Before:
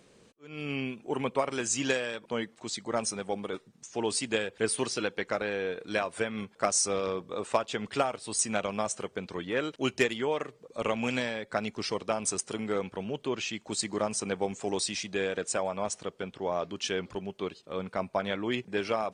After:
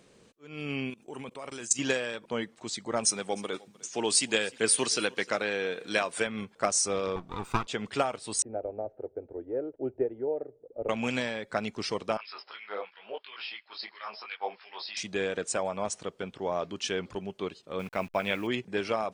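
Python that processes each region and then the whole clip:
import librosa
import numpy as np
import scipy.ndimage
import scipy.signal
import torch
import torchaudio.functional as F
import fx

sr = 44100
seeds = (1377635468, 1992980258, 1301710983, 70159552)

y = fx.chain(x, sr, fx.high_shelf(hz=5100.0, db=11.0),
    fx.level_steps(step_db=20), at=(0.9, 1.79))
y = fx.chain(y, sr, fx.highpass(hz=130.0, slope=12),
    fx.high_shelf(hz=2200.0, db=8.0),
    fx.echo_single(ms=305, db=-23.0), at=(3.05, 6.27))
y = fx.chain(y, sr, fx.lower_of_two(delay_ms=0.83),
    fx.high_shelf(hz=5700.0, db=-7.0), at=(7.16, 7.67))
y = fx.chain(y, sr, fx.lowpass(hz=1000.0, slope=24),
    fx.fixed_phaser(hz=450.0, stages=4), at=(8.42, 10.89))
y = fx.chain(y, sr, fx.brickwall_lowpass(high_hz=5400.0),
    fx.filter_lfo_highpass(shape='sine', hz=2.9, low_hz=590.0, high_hz=2200.0, q=2.0),
    fx.detune_double(cents=31), at=(12.17, 14.97))
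y = fx.chain(y, sr, fx.delta_hold(step_db=-49.0),
    fx.peak_eq(hz=2500.0, db=12.0, octaves=0.42), at=(17.79, 18.47))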